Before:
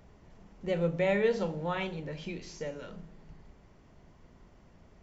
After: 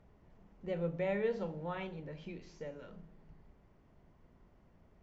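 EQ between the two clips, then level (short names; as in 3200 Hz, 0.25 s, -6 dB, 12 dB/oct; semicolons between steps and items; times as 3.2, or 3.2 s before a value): LPF 2200 Hz 6 dB/oct; -6.5 dB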